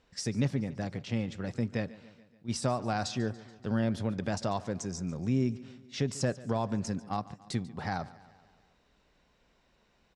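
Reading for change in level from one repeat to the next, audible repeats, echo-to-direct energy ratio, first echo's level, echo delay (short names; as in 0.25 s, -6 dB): -4.5 dB, 4, -17.0 dB, -19.0 dB, 0.143 s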